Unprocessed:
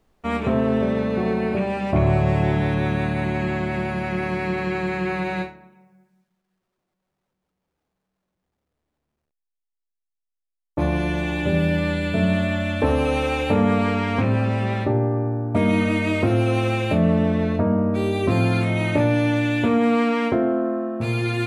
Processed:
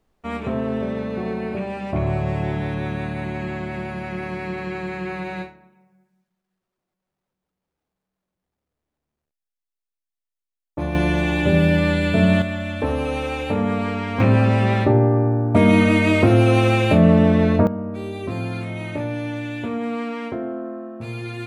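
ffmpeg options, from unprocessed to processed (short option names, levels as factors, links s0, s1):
-af "asetnsamples=n=441:p=0,asendcmd='10.95 volume volume 4dB;12.42 volume volume -3dB;14.2 volume volume 5dB;17.67 volume volume -7.5dB',volume=0.631"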